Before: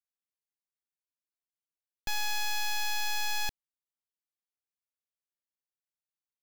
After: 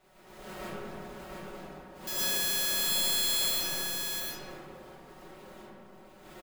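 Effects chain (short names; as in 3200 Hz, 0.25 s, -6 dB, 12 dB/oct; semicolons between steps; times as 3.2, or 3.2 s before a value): one diode to ground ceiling -32 dBFS; wind noise 400 Hz -37 dBFS; pre-emphasis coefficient 0.97; notch 5700 Hz, Q 18; comb 5.4 ms, depth 81%; modulation noise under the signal 11 dB; echo 0.703 s -4.5 dB; digital reverb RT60 2.9 s, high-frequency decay 0.3×, pre-delay 65 ms, DRR -9.5 dB; gain +1.5 dB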